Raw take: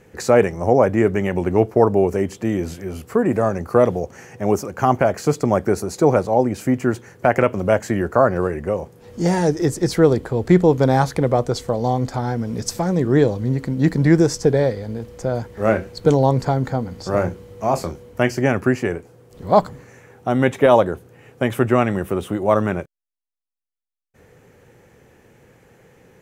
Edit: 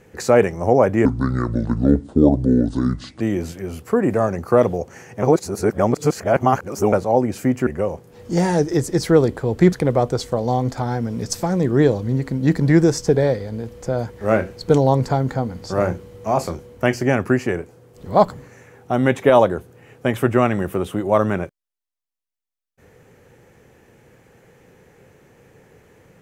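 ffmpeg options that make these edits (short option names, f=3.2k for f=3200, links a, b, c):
-filter_complex "[0:a]asplit=7[a][b][c][d][e][f][g];[a]atrim=end=1.054[h];[b]atrim=start=1.05:end=2.43,asetpts=PTS-STARTPTS,asetrate=28224,aresample=44100[i];[c]atrim=start=2.426:end=4.452[j];[d]atrim=start=4.448:end=6.152,asetpts=PTS-STARTPTS,areverse[k];[e]atrim=start=6.148:end=6.892[l];[f]atrim=start=8.548:end=10.612[m];[g]atrim=start=11.088[n];[h][i]acrossfade=d=0.004:c1=hsin:c2=hsin[o];[o][j]acrossfade=d=0.004:c1=hsin:c2=hsin[p];[p][k]acrossfade=d=0.004:c1=hsin:c2=hsin[q];[q][l]acrossfade=d=0.004:c1=hsin:c2=hsin[r];[r][m]acrossfade=d=0.004:c1=hsin:c2=hsin[s];[s][n]acrossfade=d=0.004:c1=hsin:c2=hsin"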